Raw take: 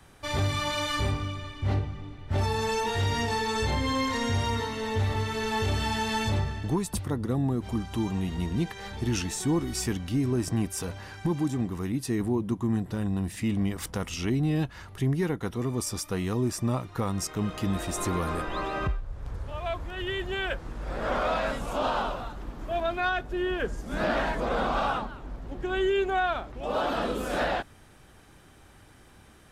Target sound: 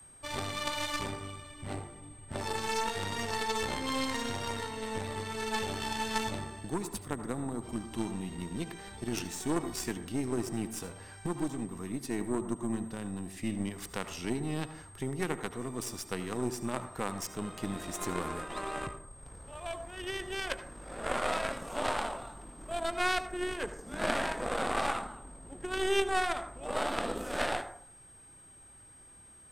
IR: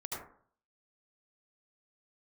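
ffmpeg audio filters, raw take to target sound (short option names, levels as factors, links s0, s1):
-filter_complex "[0:a]aeval=exprs='val(0)+0.00631*sin(2*PI*8400*n/s)':c=same,aeval=exprs='0.133*(cos(1*acos(clip(val(0)/0.133,-1,1)))-cos(1*PI/2))+0.0299*(cos(2*acos(clip(val(0)/0.133,-1,1)))-cos(2*PI/2))':c=same,acrossover=split=150[s0][s1];[s0]acompressor=threshold=0.00891:ratio=6[s2];[s2][s1]amix=inputs=2:normalize=0,aeval=exprs='0.224*(cos(1*acos(clip(val(0)/0.224,-1,1)))-cos(1*PI/2))+0.0447*(cos(2*acos(clip(val(0)/0.224,-1,1)))-cos(2*PI/2))+0.0501*(cos(3*acos(clip(val(0)/0.224,-1,1)))-cos(3*PI/2))':c=same,asplit=2[s3][s4];[1:a]atrim=start_sample=2205[s5];[s4][s5]afir=irnorm=-1:irlink=0,volume=0.335[s6];[s3][s6]amix=inputs=2:normalize=0"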